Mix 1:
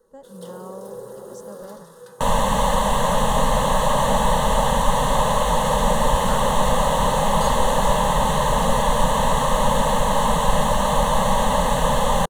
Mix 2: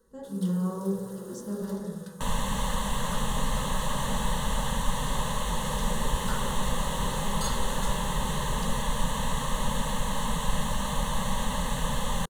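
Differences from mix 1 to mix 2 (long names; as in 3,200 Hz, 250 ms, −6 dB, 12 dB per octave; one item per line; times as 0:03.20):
speech: send on
second sound −6.5 dB
master: add parametric band 670 Hz −11.5 dB 1.3 octaves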